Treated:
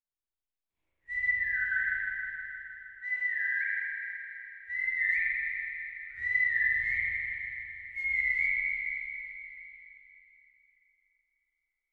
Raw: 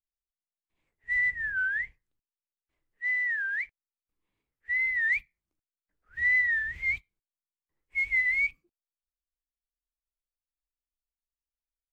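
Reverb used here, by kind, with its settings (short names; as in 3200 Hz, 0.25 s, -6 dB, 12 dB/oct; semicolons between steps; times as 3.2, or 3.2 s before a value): spring tank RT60 3.5 s, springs 37/50 ms, chirp 70 ms, DRR -7.5 dB; gain -9 dB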